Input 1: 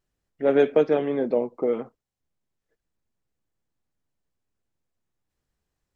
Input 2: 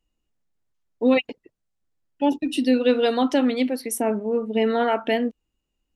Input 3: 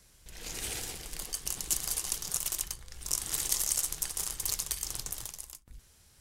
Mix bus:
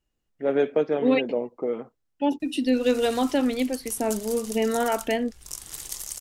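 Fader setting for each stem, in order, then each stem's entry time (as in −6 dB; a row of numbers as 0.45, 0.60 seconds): −3.5, −3.0, −5.0 decibels; 0.00, 0.00, 2.40 seconds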